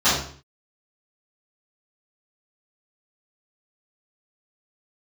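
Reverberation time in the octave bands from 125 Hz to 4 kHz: 0.60, 0.55, 0.50, 0.50, 0.45, 0.45 s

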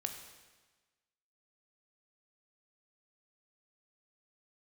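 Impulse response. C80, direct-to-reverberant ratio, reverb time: 8.5 dB, 4.5 dB, 1.3 s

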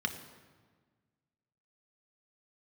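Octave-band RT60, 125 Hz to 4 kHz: 2.0, 1.8, 1.5, 1.5, 1.3, 1.1 s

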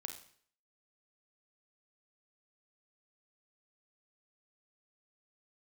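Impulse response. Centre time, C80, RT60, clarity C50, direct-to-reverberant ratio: 18 ms, 12.0 dB, 0.55 s, 8.0 dB, 4.5 dB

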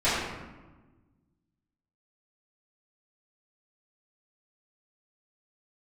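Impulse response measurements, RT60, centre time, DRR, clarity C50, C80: 1.2 s, 85 ms, -15.0 dB, -1.0 dB, 1.5 dB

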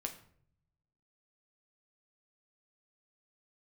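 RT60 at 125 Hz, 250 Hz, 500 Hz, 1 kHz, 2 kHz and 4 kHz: 1.4, 0.95, 0.65, 0.55, 0.50, 0.40 s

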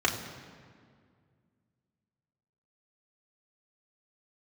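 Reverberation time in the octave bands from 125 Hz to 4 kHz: 2.8, 2.7, 2.1, 1.9, 1.7, 1.3 s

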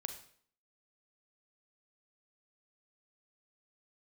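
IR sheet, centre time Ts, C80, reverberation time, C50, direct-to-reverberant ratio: 13 ms, 12.5 dB, 0.55 s, 9.5 dB, 7.0 dB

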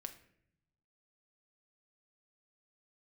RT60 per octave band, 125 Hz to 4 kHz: 1.4, 1.2, 0.80, 0.60, 0.70, 0.45 s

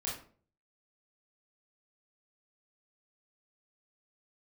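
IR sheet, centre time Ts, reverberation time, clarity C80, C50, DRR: 38 ms, 0.45 s, 10.5 dB, 4.5 dB, -6.0 dB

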